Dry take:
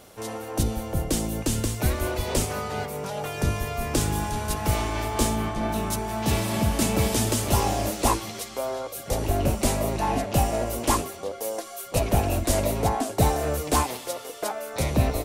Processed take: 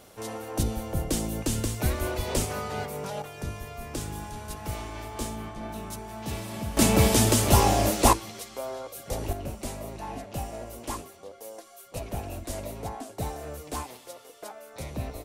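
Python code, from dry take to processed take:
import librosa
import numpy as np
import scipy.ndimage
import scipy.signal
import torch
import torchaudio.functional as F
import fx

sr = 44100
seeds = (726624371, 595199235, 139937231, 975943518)

y = fx.gain(x, sr, db=fx.steps((0.0, -2.5), (3.22, -10.0), (6.77, 3.0), (8.13, -5.5), (9.33, -12.0)))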